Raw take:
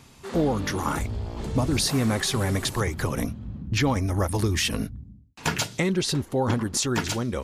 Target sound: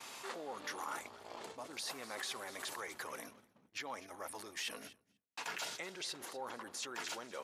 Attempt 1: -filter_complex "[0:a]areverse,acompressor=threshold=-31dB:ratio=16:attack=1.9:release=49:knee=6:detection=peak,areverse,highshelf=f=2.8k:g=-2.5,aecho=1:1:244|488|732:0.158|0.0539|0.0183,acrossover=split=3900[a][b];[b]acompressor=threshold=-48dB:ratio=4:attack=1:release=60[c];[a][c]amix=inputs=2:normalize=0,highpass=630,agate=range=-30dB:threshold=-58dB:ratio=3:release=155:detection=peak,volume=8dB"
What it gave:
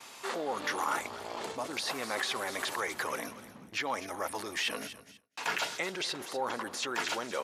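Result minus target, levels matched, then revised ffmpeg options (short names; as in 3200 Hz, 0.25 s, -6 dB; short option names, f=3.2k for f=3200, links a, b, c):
compressor: peak gain reduction -11 dB
-filter_complex "[0:a]areverse,acompressor=threshold=-42.5dB:ratio=16:attack=1.9:release=49:knee=6:detection=peak,areverse,highshelf=f=2.8k:g=-2.5,aecho=1:1:244|488|732:0.158|0.0539|0.0183,acrossover=split=3900[a][b];[b]acompressor=threshold=-48dB:ratio=4:attack=1:release=60[c];[a][c]amix=inputs=2:normalize=0,highpass=630,agate=range=-30dB:threshold=-58dB:ratio=3:release=155:detection=peak,volume=8dB"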